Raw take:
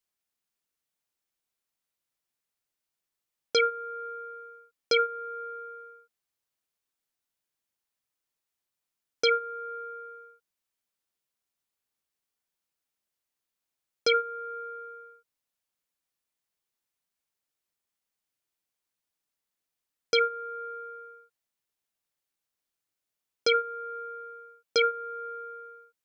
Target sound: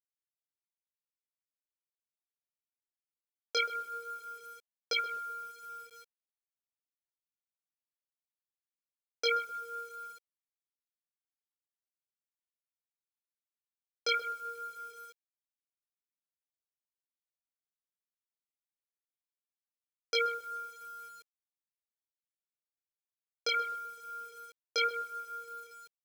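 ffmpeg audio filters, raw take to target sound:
-filter_complex "[0:a]asplit=2[s0][s1];[s1]adelay=128,lowpass=f=1000:p=1,volume=0.316,asplit=2[s2][s3];[s3]adelay=128,lowpass=f=1000:p=1,volume=0.44,asplit=2[s4][s5];[s5]adelay=128,lowpass=f=1000:p=1,volume=0.44,asplit=2[s6][s7];[s7]adelay=128,lowpass=f=1000:p=1,volume=0.44,asplit=2[s8][s9];[s9]adelay=128,lowpass=f=1000:p=1,volume=0.44[s10];[s2][s4][s6][s8][s10]amix=inputs=5:normalize=0[s11];[s0][s11]amix=inputs=2:normalize=0,flanger=delay=18:depth=6.9:speed=0.19,highpass=570,acrusher=bits=8:mix=0:aa=0.000001,volume=0.841"

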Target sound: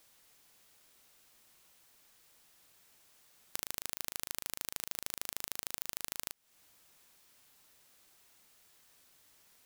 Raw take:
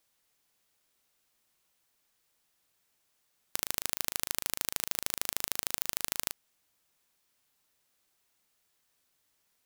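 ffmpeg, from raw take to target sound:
-af "acompressor=threshold=0.00708:ratio=6,volume=3.16"

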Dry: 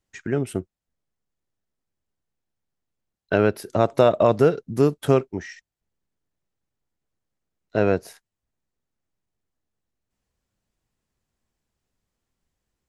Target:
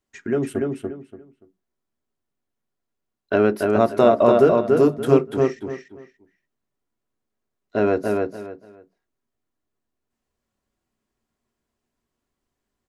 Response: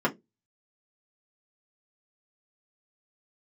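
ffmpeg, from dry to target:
-filter_complex "[0:a]asplit=2[s0][s1];[s1]adelay=288,lowpass=f=4300:p=1,volume=0.708,asplit=2[s2][s3];[s3]adelay=288,lowpass=f=4300:p=1,volume=0.24,asplit=2[s4][s5];[s5]adelay=288,lowpass=f=4300:p=1,volume=0.24[s6];[s0][s2][s4][s6]amix=inputs=4:normalize=0,asplit=2[s7][s8];[1:a]atrim=start_sample=2205[s9];[s8][s9]afir=irnorm=-1:irlink=0,volume=0.168[s10];[s7][s10]amix=inputs=2:normalize=0,volume=0.708"

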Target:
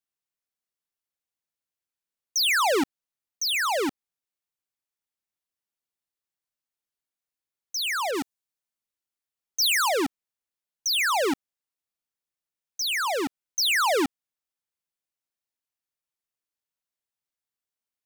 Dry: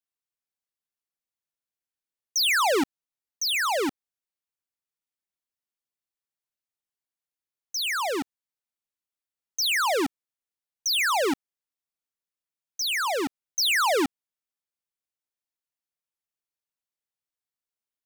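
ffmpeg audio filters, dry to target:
-filter_complex "[0:a]asettb=1/sr,asplit=3[s0][s1][s2];[s0]atrim=end=8.114[s3];[s1]atrim=start=8.11:end=9.89,asetpts=PTS-STARTPTS,afade=t=in:d=0.004:c=qsin,afade=t=out:st=1.776:d=0.004:c=qsin,adynamicequalizer=threshold=0.01:dfrequency=4400:dqfactor=0.7:tfrequency=4400:tqfactor=0.7:attack=5:release=100:ratio=0.375:range=3:mode=boostabove:tftype=highshelf[s4];[s2]atrim=start=9.886[s5];[s3][s4]acrossfade=d=0.004:c1=hsin:c2=qsin[s6];[s6][s5]acrossfade=d=0.004:c1=qsin:c2=hsin"

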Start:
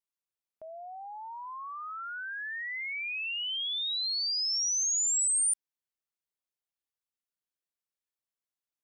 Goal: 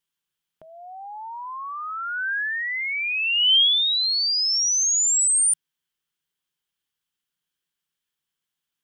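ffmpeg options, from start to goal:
-af "equalizer=f=160:t=o:w=0.33:g=10,equalizer=f=630:t=o:w=0.33:g=-11,equalizer=f=1600:t=o:w=0.33:g=5,equalizer=f=3150:t=o:w=0.33:g=10,volume=2.37"

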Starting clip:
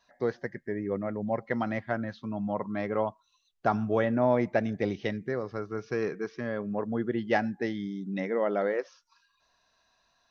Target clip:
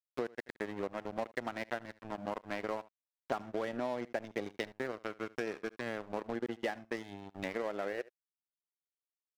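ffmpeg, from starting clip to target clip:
-filter_complex "[0:a]asplit=2[s0][s1];[s1]acrusher=bits=3:mix=0:aa=0.5,volume=0.376[s2];[s0][s2]amix=inputs=2:normalize=0,highpass=240,aeval=exprs='sgn(val(0))*max(abs(val(0))-0.0158,0)':c=same,acompressor=mode=upward:threshold=0.00891:ratio=2.5,aecho=1:1:81:0.0668,acompressor=threshold=0.0158:ratio=6,atempo=1.1,volume=1.33"

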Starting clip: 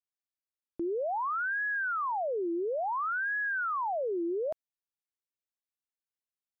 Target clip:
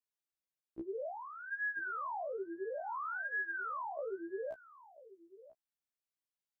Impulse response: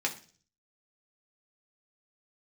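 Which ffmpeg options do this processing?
-filter_complex "[0:a]asplit=3[s0][s1][s2];[s0]afade=t=out:st=1.09:d=0.02[s3];[s1]equalizer=f=1300:w=0.9:g=-13.5,afade=t=in:st=1.09:d=0.02,afade=t=out:st=1.51:d=0.02[s4];[s2]afade=t=in:st=1.51:d=0.02[s5];[s3][s4][s5]amix=inputs=3:normalize=0,asettb=1/sr,asplit=3[s6][s7][s8];[s6]atrim=end=2.804[s9];[s7]atrim=start=2.8:end=3.99,asetpts=PTS-STARTPTS,afade=t=in:d=0.004:c=qsin,afade=t=out:st=1.186:d=0.004:c=qsin,highpass=f=860:w=0.5412,highpass=f=860:w=1.3066[s10];[s8]atrim=start=3.986[s11];[s9][s10]acrossfade=d=0.004:c1=hsin:c2=qsin[s12];[s12][s11]acrossfade=d=0.004:c1=qsin:c2=hsin,acompressor=threshold=0.0178:ratio=6,asplit=2[s13][s14];[s14]adelay=991.3,volume=0.141,highshelf=f=4000:g=-22.3[s15];[s13][s15]amix=inputs=2:normalize=0,afftfilt=real='re*1.73*eq(mod(b,3),0)':imag='im*1.73*eq(mod(b,3),0)':win_size=2048:overlap=0.75,volume=0.891"

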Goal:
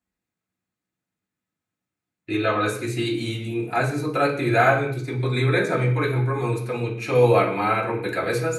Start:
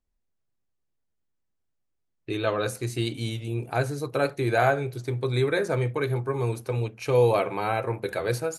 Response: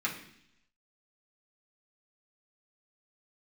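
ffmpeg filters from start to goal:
-filter_complex "[0:a]highpass=85[s0];[1:a]atrim=start_sample=2205,afade=t=out:st=0.31:d=0.01,atrim=end_sample=14112[s1];[s0][s1]afir=irnorm=-1:irlink=0"

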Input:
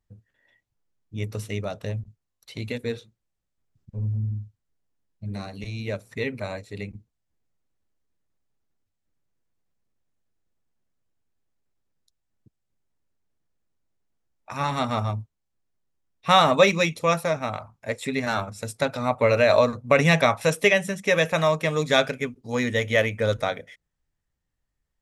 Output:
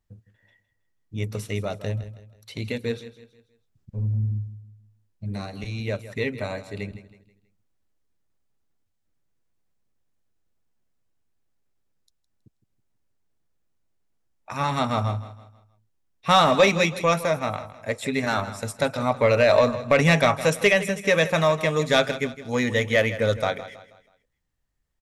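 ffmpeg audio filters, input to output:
-af "acontrast=81,aecho=1:1:161|322|483|644:0.188|0.0735|0.0287|0.0112,volume=0.531"

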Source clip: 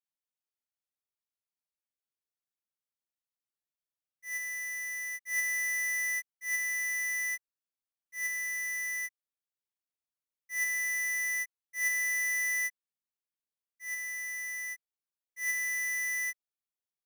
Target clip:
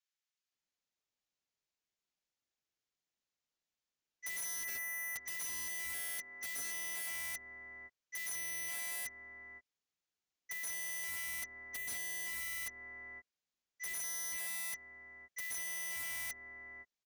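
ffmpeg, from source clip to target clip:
-filter_complex "[0:a]asplit=2[s0][s1];[s1]alimiter=level_in=4.47:limit=0.0631:level=0:latency=1:release=451,volume=0.224,volume=0.75[s2];[s0][s2]amix=inputs=2:normalize=0,asplit=3[s3][s4][s5];[s3]afade=t=out:st=4.63:d=0.02[s6];[s4]equalizer=f=1600:w=1.8:g=4.5,afade=t=in:st=4.63:d=0.02,afade=t=out:st=5.2:d=0.02[s7];[s5]afade=t=in:st=5.2:d=0.02[s8];[s6][s7][s8]amix=inputs=3:normalize=0,asettb=1/sr,asplit=3[s9][s10][s11];[s9]atrim=end=8.914[s12];[s10]atrim=start=8.91:end=10.62,asetpts=PTS-STARTPTS,afade=t=in:d=0.004:c=qsin,afade=t=out:st=1.706:d=0.004:c=qsin,bandreject=f=590:w=12[s13];[s11]atrim=start=10.616[s14];[s12][s13]acrossfade=d=0.004:c1=hsin:c2=qsin[s15];[s15][s14]acrossfade=d=0.004:c1=qsin:c2=hsin,acrossover=split=1100[s16][s17];[s16]adelay=520[s18];[s18][s17]amix=inputs=2:normalize=0,aresample=16000,aresample=44100,asettb=1/sr,asplit=3[s19][s20][s21];[s19]atrim=end=5.944[s22];[s20]atrim=start=5.94:end=7.07,asetpts=PTS-STARTPTS,afade=t=in:d=0.004:c=qsin,afade=t=out:st=1.126:d=0.004:c=qsin,equalizer=f=62:w=0.71:g=-12.5[s23];[s21]atrim=start=7.066[s24];[s22][s23]acrossfade=d=0.004:c1=hsin:c2=qsin[s25];[s25][s24]acrossfade=d=0.004:c1=qsin:c2=hsin,acrossover=split=430[s26][s27];[s27]acompressor=threshold=0.0158:ratio=8[s28];[s26][s28]amix=inputs=2:normalize=0,aeval=exprs='(mod(79.4*val(0)+1,2)-1)/79.4':c=same"

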